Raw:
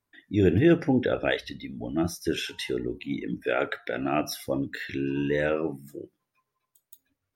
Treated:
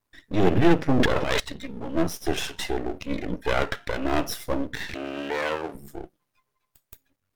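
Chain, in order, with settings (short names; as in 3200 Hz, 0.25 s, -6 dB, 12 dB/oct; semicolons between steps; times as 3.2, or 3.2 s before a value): half-wave rectifier; 0.91–1.4 transient shaper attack -10 dB, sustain +11 dB; 4.94–5.75 HPF 560 Hz 6 dB/oct; gain +6.5 dB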